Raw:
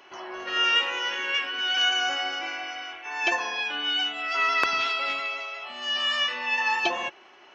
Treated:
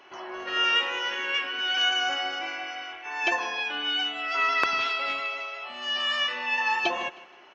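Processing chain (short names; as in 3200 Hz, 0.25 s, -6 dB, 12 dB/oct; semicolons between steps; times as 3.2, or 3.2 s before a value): high shelf 4900 Hz -5.5 dB; on a send: feedback echo 0.157 s, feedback 38%, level -18.5 dB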